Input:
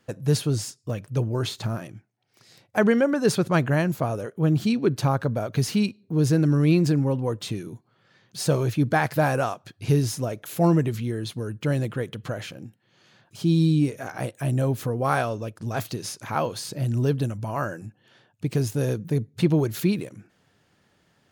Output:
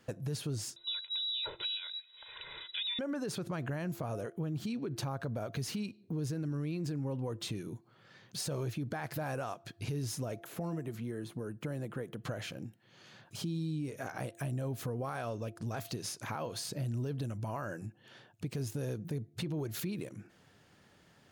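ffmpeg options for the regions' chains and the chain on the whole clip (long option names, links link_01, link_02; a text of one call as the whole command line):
ffmpeg -i in.wav -filter_complex "[0:a]asettb=1/sr,asplit=3[link_01][link_02][link_03];[link_01]atrim=end=0.764[link_04];[link_02]atrim=start=0.76:end=2.99,asetpts=PTS-STARTPTS,afade=type=in:duration=0.004:curve=qsin,afade=type=out:start_time=2.226:duration=0.004:curve=qsin,aecho=1:1:2:0.89,atrim=end_sample=98343,acompressor=mode=upward:threshold=-32dB:ratio=2.5:attack=3.2:release=140:knee=2.83:detection=peak,lowpass=frequency=3400:width_type=q:width=0.5098,lowpass=frequency=3400:width_type=q:width=0.6013,lowpass=frequency=3400:width_type=q:width=0.9,lowpass=frequency=3400:width_type=q:width=2.563,afreqshift=-4000[link_05];[link_03]atrim=start=2.986[link_06];[link_04][link_05]acrossfade=duration=0.004:curve1=hsin:curve2=qsin[link_07];[link_07][link_06]acrossfade=duration=0.004:curve1=qsin:curve2=hsin,asettb=1/sr,asplit=3[link_08][link_09][link_10];[link_08]atrim=end=10.404[link_11];[link_09]atrim=start=10.4:end=12.25,asetpts=PTS-STARTPTS,afade=type=in:duration=0.004:curve=qsin,afade=type=out:start_time=1.846:duration=0.004:curve=qsin,acrossover=split=590|1800|7800[link_12][link_13][link_14][link_15];[link_12]acompressor=threshold=-28dB:ratio=3[link_16];[link_13]acompressor=threshold=-38dB:ratio=3[link_17];[link_14]acompressor=threshold=-58dB:ratio=3[link_18];[link_15]acompressor=threshold=-54dB:ratio=3[link_19];[link_16][link_17][link_18][link_19]amix=inputs=4:normalize=0,equalizer=frequency=91:width_type=o:width=0.46:gain=-13.5[link_20];[link_10]atrim=start=12.246[link_21];[link_11][link_20]acrossfade=duration=0.004:curve1=hsin:curve2=qsin[link_22];[link_22][link_21]acrossfade=duration=0.004:curve1=qsin:curve2=hsin,bandreject=frequency=341.9:width_type=h:width=4,bandreject=frequency=683.8:width_type=h:width=4,alimiter=limit=-20.5dB:level=0:latency=1:release=91,acompressor=threshold=-43dB:ratio=2,volume=1dB" out.wav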